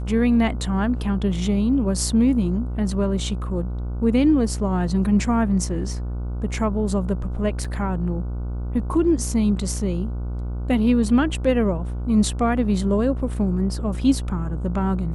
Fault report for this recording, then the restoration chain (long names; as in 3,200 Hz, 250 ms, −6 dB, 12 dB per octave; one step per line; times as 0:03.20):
mains buzz 60 Hz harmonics 25 −27 dBFS
0:07.64: drop-out 5 ms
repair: hum removal 60 Hz, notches 25
repair the gap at 0:07.64, 5 ms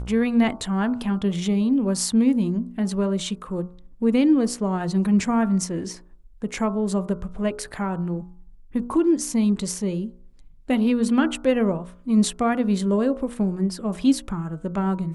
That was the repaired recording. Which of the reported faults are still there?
none of them is left